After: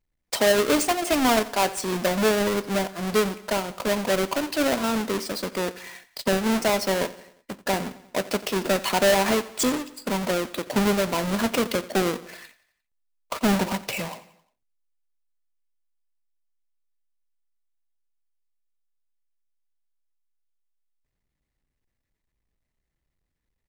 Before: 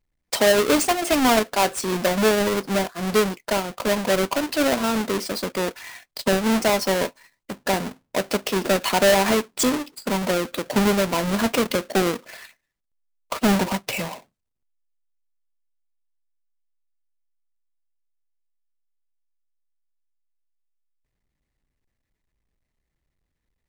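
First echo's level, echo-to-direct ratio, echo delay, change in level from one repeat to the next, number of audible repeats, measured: −18.0 dB, −16.5 dB, 88 ms, −5.5 dB, 3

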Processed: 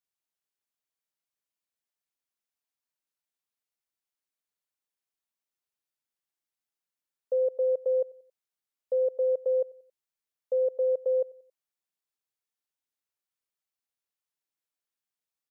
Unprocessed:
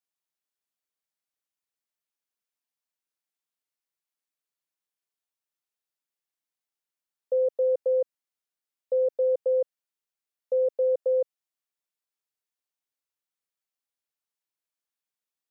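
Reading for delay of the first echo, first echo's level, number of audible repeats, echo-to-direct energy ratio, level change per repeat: 91 ms, −24.0 dB, 2, −23.0 dB, −6.5 dB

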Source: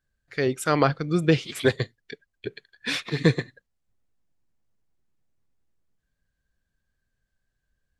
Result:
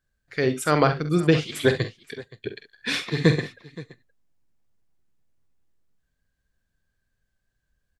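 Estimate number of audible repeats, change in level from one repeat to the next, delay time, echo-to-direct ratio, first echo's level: 2, repeats not evenly spaced, 46 ms, −8.0 dB, −10.0 dB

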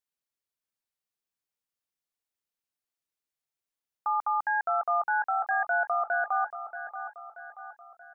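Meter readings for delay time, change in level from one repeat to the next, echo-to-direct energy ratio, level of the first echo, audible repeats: 631 ms, −6.0 dB, −10.0 dB, −11.0 dB, 4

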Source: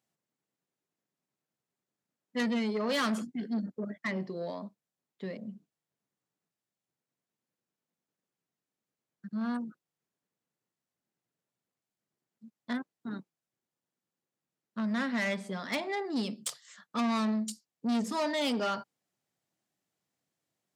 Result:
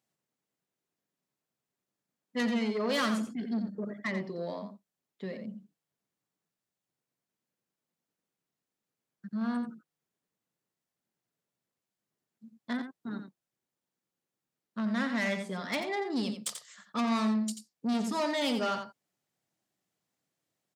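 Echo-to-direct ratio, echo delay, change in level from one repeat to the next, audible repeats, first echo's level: −8.5 dB, 87 ms, repeats not evenly spaced, 1, −8.5 dB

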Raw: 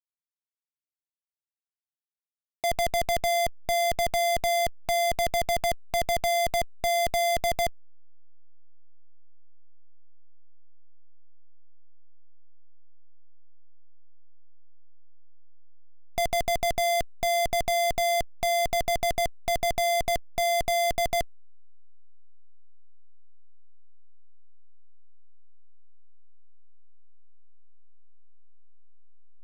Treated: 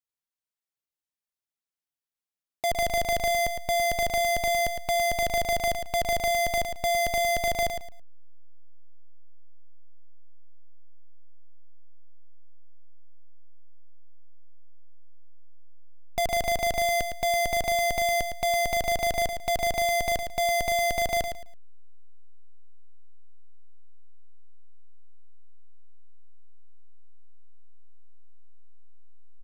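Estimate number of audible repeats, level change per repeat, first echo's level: 3, −12.5 dB, −7.5 dB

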